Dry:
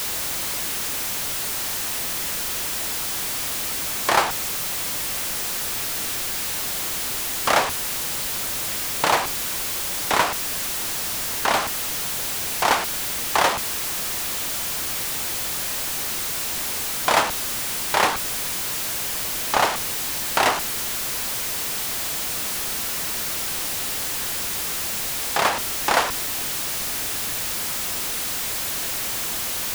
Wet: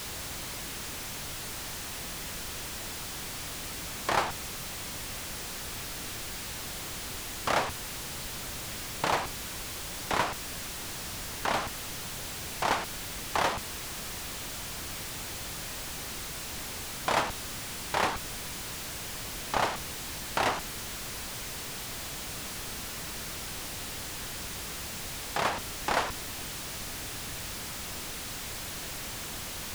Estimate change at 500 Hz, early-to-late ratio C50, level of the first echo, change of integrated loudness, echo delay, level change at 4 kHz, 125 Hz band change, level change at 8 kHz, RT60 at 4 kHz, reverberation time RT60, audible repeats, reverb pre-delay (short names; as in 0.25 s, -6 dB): -8.0 dB, none, none, -11.0 dB, none, -9.5 dB, -2.0 dB, -11.5 dB, none, none, none, none